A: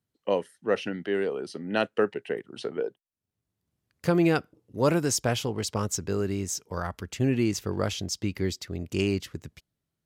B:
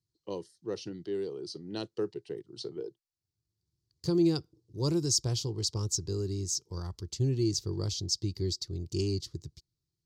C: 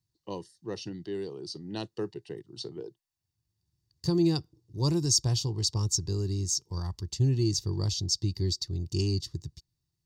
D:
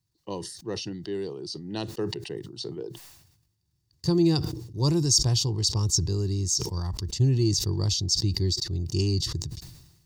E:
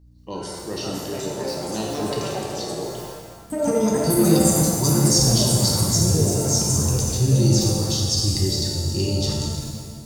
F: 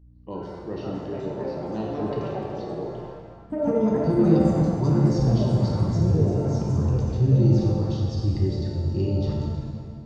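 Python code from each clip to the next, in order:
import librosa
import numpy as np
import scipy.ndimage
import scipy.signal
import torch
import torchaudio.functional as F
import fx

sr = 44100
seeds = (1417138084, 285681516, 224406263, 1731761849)

y1 = fx.curve_eq(x, sr, hz=(140.0, 240.0, 340.0, 610.0, 1000.0, 1500.0, 2600.0, 4500.0, 7000.0, 11000.0), db=(0, -15, -1, -19, -12, -22, -19, 5, -1, -11))
y2 = y1 + 0.4 * np.pad(y1, (int(1.1 * sr / 1000.0), 0))[:len(y1)]
y2 = F.gain(torch.from_numpy(y2), 2.0).numpy()
y3 = fx.sustainer(y2, sr, db_per_s=57.0)
y3 = F.gain(torch.from_numpy(y3), 3.0).numpy()
y4 = fx.add_hum(y3, sr, base_hz=60, snr_db=26)
y4 = fx.echo_pitch(y4, sr, ms=617, semitones=5, count=2, db_per_echo=-3.0)
y4 = fx.rev_shimmer(y4, sr, seeds[0], rt60_s=1.7, semitones=7, shimmer_db=-8, drr_db=-2.5)
y5 = fx.spacing_loss(y4, sr, db_at_10k=44)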